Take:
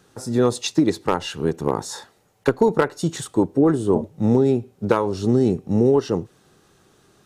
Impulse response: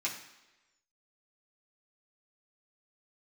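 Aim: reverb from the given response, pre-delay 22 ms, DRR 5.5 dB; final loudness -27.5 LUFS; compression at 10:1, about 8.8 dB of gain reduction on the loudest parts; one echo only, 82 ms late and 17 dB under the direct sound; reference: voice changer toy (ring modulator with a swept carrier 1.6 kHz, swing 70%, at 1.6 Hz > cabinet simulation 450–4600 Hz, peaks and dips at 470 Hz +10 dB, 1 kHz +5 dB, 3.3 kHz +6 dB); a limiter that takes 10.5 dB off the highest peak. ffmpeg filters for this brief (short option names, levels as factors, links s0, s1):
-filter_complex "[0:a]acompressor=threshold=0.0891:ratio=10,alimiter=limit=0.106:level=0:latency=1,aecho=1:1:82:0.141,asplit=2[s0][s1];[1:a]atrim=start_sample=2205,adelay=22[s2];[s1][s2]afir=irnorm=-1:irlink=0,volume=0.316[s3];[s0][s3]amix=inputs=2:normalize=0,aeval=exprs='val(0)*sin(2*PI*1600*n/s+1600*0.7/1.6*sin(2*PI*1.6*n/s))':c=same,highpass=450,equalizer=f=470:t=q:w=4:g=10,equalizer=f=1000:t=q:w=4:g=5,equalizer=f=3300:t=q:w=4:g=6,lowpass=f=4600:w=0.5412,lowpass=f=4600:w=1.3066,volume=1.33"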